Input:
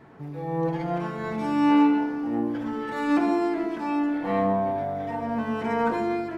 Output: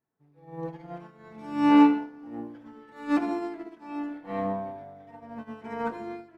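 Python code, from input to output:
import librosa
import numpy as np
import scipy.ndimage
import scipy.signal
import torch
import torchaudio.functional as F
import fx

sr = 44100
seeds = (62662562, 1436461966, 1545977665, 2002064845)

y = fx.upward_expand(x, sr, threshold_db=-43.0, expansion=2.5)
y = y * 10.0 ** (3.0 / 20.0)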